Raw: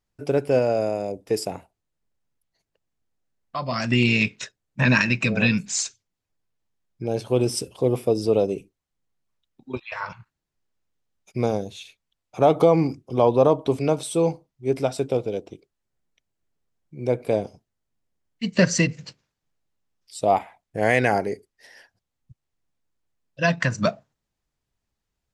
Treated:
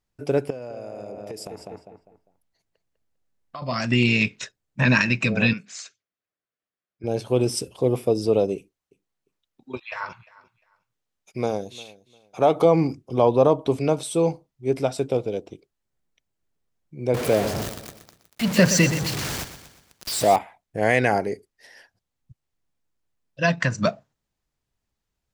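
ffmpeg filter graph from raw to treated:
ffmpeg -i in.wav -filter_complex "[0:a]asettb=1/sr,asplit=3[link_01][link_02][link_03];[link_01]atrim=end=0.504[link_04];[link_02]atrim=start=0.5:end=3.62,asetpts=PTS-STARTPTS,afade=type=in:duration=0.004:curve=qsin,afade=type=out:start_time=3.116:duration=0.004:curve=qsin,asplit=2[link_05][link_06];[link_06]adelay=200,lowpass=frequency=2900:poles=1,volume=-7.5dB,asplit=2[link_07][link_08];[link_08]adelay=200,lowpass=frequency=2900:poles=1,volume=0.33,asplit=2[link_09][link_10];[link_10]adelay=200,lowpass=frequency=2900:poles=1,volume=0.33,asplit=2[link_11][link_12];[link_12]adelay=200,lowpass=frequency=2900:poles=1,volume=0.33[link_13];[link_05][link_07][link_09][link_11][link_13]amix=inputs=5:normalize=0,atrim=end_sample=137592,acompressor=threshold=-31dB:ratio=16:attack=3.2:release=140:knee=1:detection=peak[link_14];[link_03]atrim=start=3.616[link_15];[link_04][link_14]acrossfade=duration=0.004:curve1=hsin:curve2=qsin[link_16];[link_16][link_15]acrossfade=duration=0.004:curve1=qsin:curve2=hsin,asettb=1/sr,asplit=3[link_17][link_18][link_19];[link_17]atrim=end=5.534[link_20];[link_18]atrim=start=5.53:end=7.04,asetpts=PTS-STARTPTS,afade=type=in:duration=0.004:curve=qsin,afade=type=out:start_time=1.506:duration=0.004:curve=qsin,bandpass=frequency=1100:width_type=q:width=0.72,equalizer=frequency=900:width_type=o:width=0.31:gain=-14.5[link_21];[link_19]atrim=start=7.036[link_22];[link_20][link_21]acrossfade=duration=0.004:curve1=hsin:curve2=qsin[link_23];[link_23][link_22]acrossfade=duration=0.004:curve1=qsin:curve2=hsin,asettb=1/sr,asplit=3[link_24][link_25][link_26];[link_24]atrim=end=8.564[link_27];[link_25]atrim=start=8.56:end=12.65,asetpts=PTS-STARTPTS,afade=type=in:duration=0.004:curve=qsin,afade=type=out:start_time=4.086:duration=0.004:curve=qsin,lowshelf=frequency=230:gain=-7.5,aecho=1:1:351|702:0.0891|0.0205,atrim=end_sample=180369[link_28];[link_26]atrim=start=12.646[link_29];[link_27][link_28]acrossfade=duration=0.004:curve1=hsin:curve2=qsin[link_30];[link_30][link_29]acrossfade=duration=0.004:curve1=qsin:curve2=hsin,asettb=1/sr,asplit=3[link_31][link_32][link_33];[link_31]atrim=end=17.144[link_34];[link_32]atrim=start=17.14:end=20.36,asetpts=PTS-STARTPTS,afade=type=in:duration=0.004:curve=qsin,afade=type=out:start_time=3.216:duration=0.004:curve=qsin,aeval=exprs='val(0)+0.5*0.075*sgn(val(0))':channel_layout=same,highpass=49,aecho=1:1:121|242|363|484|605:0.251|0.121|0.0579|0.0278|0.0133,atrim=end_sample=142002[link_35];[link_33]atrim=start=20.356[link_36];[link_34][link_35]acrossfade=duration=0.004:curve1=hsin:curve2=qsin[link_37];[link_37][link_36]acrossfade=duration=0.004:curve1=qsin:curve2=hsin" out.wav

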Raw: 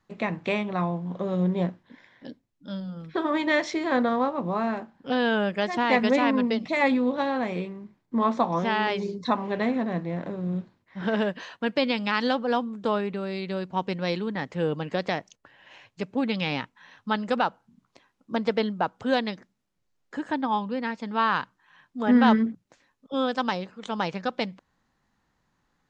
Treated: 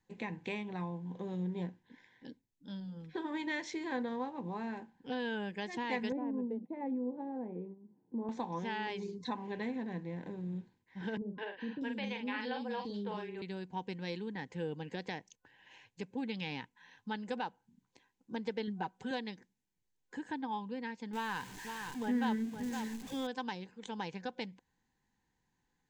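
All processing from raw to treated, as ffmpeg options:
ffmpeg -i in.wav -filter_complex "[0:a]asettb=1/sr,asplit=3[link_01][link_02][link_03];[link_01]atrim=end=6.124[link_04];[link_02]atrim=start=6.12:end=8.29,asetpts=PTS-STARTPTS,afade=type=in:duration=0.004:curve=qsin,afade=type=out:start_time=2.166:duration=0.004:curve=qsin,agate=range=-19dB:threshold=-37dB:ratio=16:release=100:detection=peak,acompressor=mode=upward:threshold=-30dB:ratio=2.5:attack=3.2:release=140:knee=2.83:detection=peak,asuperpass=centerf=350:order=4:qfactor=0.68[link_05];[link_03]atrim=start=8.286[link_06];[link_04][link_05]acrossfade=duration=0.004:curve1=hsin:curve2=qsin[link_07];[link_07][link_06]acrossfade=duration=0.004:curve1=qsin:curve2=hsin,asettb=1/sr,asplit=3[link_08][link_09][link_10];[link_08]atrim=end=11.174[link_11];[link_09]atrim=start=11.17:end=13.42,asetpts=PTS-STARTPTS,afade=type=in:duration=0.004:curve=qsin,afade=type=out:start_time=2.246:duration=0.004:curve=qsin,acrossover=split=4800[link_12][link_13];[link_13]acompressor=threshold=-58dB:ratio=4:attack=1:release=60[link_14];[link_12][link_14]amix=inputs=2:normalize=0,asplit=2[link_15][link_16];[link_16]adelay=44,volume=-6dB[link_17];[link_15][link_17]amix=inputs=2:normalize=0,atrim=end_sample=99225,acrossover=split=410|4100[link_18][link_19][link_20];[link_19]adelay=210[link_21];[link_20]adelay=640[link_22];[link_18][link_21][link_22]amix=inputs=3:normalize=0,atrim=end_sample=99225[link_23];[link_10]atrim=start=13.416[link_24];[link_11][link_23]acrossfade=duration=0.004:curve1=hsin:curve2=qsin[link_25];[link_25][link_24]acrossfade=duration=0.004:curve1=qsin:curve2=hsin,asettb=1/sr,asplit=3[link_26][link_27][link_28];[link_26]atrim=end=18.674[link_29];[link_27]atrim=start=18.67:end=19.11,asetpts=PTS-STARTPTS,afade=type=in:duration=0.004:curve=qsin,afade=type=out:start_time=0.436:duration=0.004:curve=qsin,bandreject=frequency=570:width=8.6,aecho=1:1:5.3:0.71,atrim=end_sample=19404[link_30];[link_28]atrim=start=19.106[link_31];[link_29][link_30]acrossfade=duration=0.004:curve1=hsin:curve2=qsin[link_32];[link_32][link_31]acrossfade=duration=0.004:curve1=qsin:curve2=hsin,asettb=1/sr,asplit=3[link_33][link_34][link_35];[link_33]atrim=end=21.134[link_36];[link_34]atrim=start=21.13:end=23.27,asetpts=PTS-STARTPTS,afade=type=in:duration=0.004:curve=qsin,afade=type=out:start_time=2.136:duration=0.004:curve=qsin,aeval=exprs='val(0)+0.5*0.0211*sgn(val(0))':channel_layout=same,aecho=1:1:516:0.335,atrim=end_sample=94374[link_37];[link_35]atrim=start=23.266[link_38];[link_36][link_37]acrossfade=duration=0.004:curve1=hsin:curve2=qsin[link_39];[link_39][link_38]acrossfade=duration=0.004:curve1=qsin:curve2=hsin,superequalizer=8b=0.355:10b=0.282:15b=1.58,acompressor=threshold=-33dB:ratio=1.5,volume=-8dB" out.wav

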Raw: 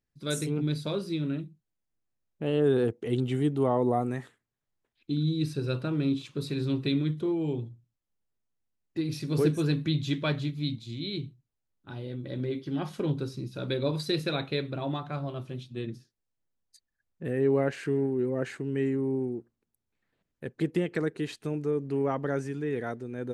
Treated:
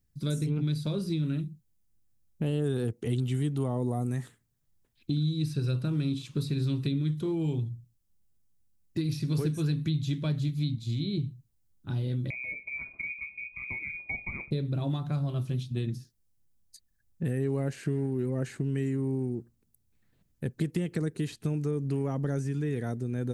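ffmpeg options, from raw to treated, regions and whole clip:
ffmpeg -i in.wav -filter_complex "[0:a]asettb=1/sr,asplit=3[link_01][link_02][link_03];[link_01]atrim=end=12.304[link_04];[link_02]atrim=start=12.3:end=14.51,asetpts=PTS-STARTPTS,afade=type=in:duration=0.004:curve=qsin,afade=type=out:start_time=2.206:duration=0.004:curve=qsin,lowshelf=frequency=530:width_type=q:width=3:gain=11.5,lowpass=frequency=2200:width_type=q:width=0.5098,lowpass=frequency=2200:width_type=q:width=0.6013,lowpass=frequency=2200:width_type=q:width=0.9,lowpass=frequency=2200:width_type=q:width=2.563,afreqshift=-2600[link_05];[link_03]atrim=start=14.506[link_06];[link_04][link_05]acrossfade=duration=0.004:curve1=hsin:curve2=qsin[link_07];[link_07][link_06]acrossfade=duration=0.004:curve1=qsin:curve2=hsin,bass=frequency=250:gain=14,treble=frequency=4000:gain=7,acrossover=split=780|4700[link_08][link_09][link_10];[link_08]acompressor=threshold=-28dB:ratio=4[link_11];[link_09]acompressor=threshold=-46dB:ratio=4[link_12];[link_10]acompressor=threshold=-54dB:ratio=4[link_13];[link_11][link_12][link_13]amix=inputs=3:normalize=0,highshelf=frequency=9300:gain=6" out.wav

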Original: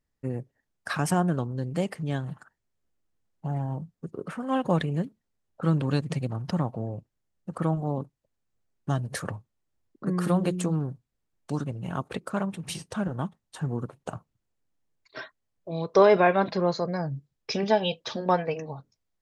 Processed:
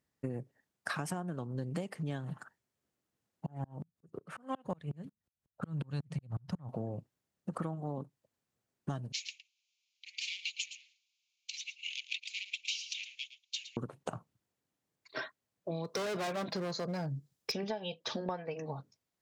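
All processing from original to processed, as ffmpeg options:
ffmpeg -i in.wav -filter_complex "[0:a]asettb=1/sr,asplit=3[link_01][link_02][link_03];[link_01]atrim=end=3.464[link_04];[link_02]atrim=start=3.46:end=6.69,asetpts=PTS-STARTPTS,afade=type=in:duration=0.004:curve=qsin,afade=type=out:start_time=3.226:duration=0.004:curve=qsin,asubboost=boost=10:cutoff=110,aeval=exprs='val(0)*pow(10,-35*if(lt(mod(-5.5*n/s,1),2*abs(-5.5)/1000),1-mod(-5.5*n/s,1)/(2*abs(-5.5)/1000),(mod(-5.5*n/s,1)-2*abs(-5.5)/1000)/(1-2*abs(-5.5)/1000))/20)':channel_layout=same[link_05];[link_03]atrim=start=6.686[link_06];[link_04][link_05]acrossfade=duration=0.004:curve1=hsin:curve2=qsin[link_07];[link_07][link_06]acrossfade=duration=0.004:curve1=qsin:curve2=hsin,asettb=1/sr,asplit=3[link_08][link_09][link_10];[link_08]atrim=end=9.124[link_11];[link_09]atrim=start=9.12:end=13.77,asetpts=PTS-STARTPTS,afade=type=in:duration=0.004:curve=qsin,afade=type=out:start_time=4.646:duration=0.004:curve=qsin,asplit=2[link_12][link_13];[link_13]highpass=frequency=720:poles=1,volume=22dB,asoftclip=type=tanh:threshold=-13dB[link_14];[link_12][link_14]amix=inputs=2:normalize=0,lowpass=frequency=3300:poles=1,volume=-6dB,asuperpass=centerf=4100:order=20:qfactor=0.85,aecho=1:1:112:0.188,atrim=end_sample=205065[link_15];[link_10]atrim=start=13.766[link_16];[link_11][link_15]acrossfade=duration=0.004:curve1=hsin:curve2=qsin[link_17];[link_17][link_16]acrossfade=duration=0.004:curve1=qsin:curve2=hsin,asettb=1/sr,asplit=3[link_18][link_19][link_20];[link_18]atrim=end=15.844[link_21];[link_19]atrim=start=15.84:end=17.52,asetpts=PTS-STARTPTS,afade=type=in:duration=0.004:curve=qsin,afade=type=out:start_time=1.676:duration=0.004:curve=qsin,asoftclip=type=hard:threshold=-25dB,bass=frequency=250:gain=2,treble=frequency=4000:gain=7[link_22];[link_20]atrim=start=17.516[link_23];[link_21][link_22]acrossfade=duration=0.004:curve1=hsin:curve2=qsin[link_24];[link_24][link_23]acrossfade=duration=0.004:curve1=qsin:curve2=hsin,highpass=110,acompressor=threshold=-35dB:ratio=12,volume=1.5dB" out.wav

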